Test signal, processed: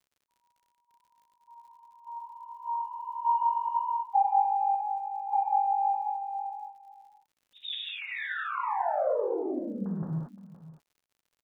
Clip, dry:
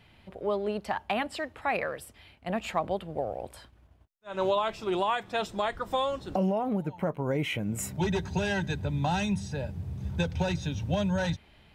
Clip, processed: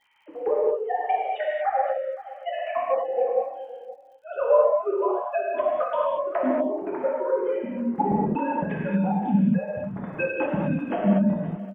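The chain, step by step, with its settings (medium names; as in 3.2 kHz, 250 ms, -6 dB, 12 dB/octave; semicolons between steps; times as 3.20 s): formants replaced by sine waves; low-pass that closes with the level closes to 610 Hz, closed at -26 dBFS; transient shaper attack +6 dB, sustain -9 dB; flange 1.5 Hz, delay 6.9 ms, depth 3.5 ms, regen -33%; distance through air 160 m; on a send: delay 519 ms -16 dB; on the sum: gated-style reverb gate 260 ms flat, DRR -5 dB; crackle 89 per s -60 dBFS; trim +3.5 dB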